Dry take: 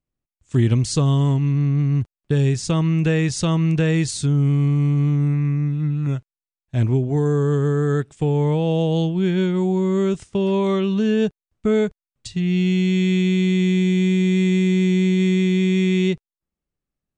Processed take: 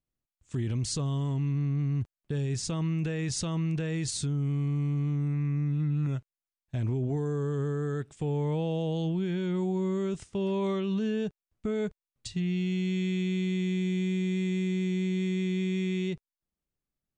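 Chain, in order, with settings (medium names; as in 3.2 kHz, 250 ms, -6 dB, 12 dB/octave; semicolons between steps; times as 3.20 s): peak limiter -17.5 dBFS, peak gain reduction 11.5 dB; trim -5 dB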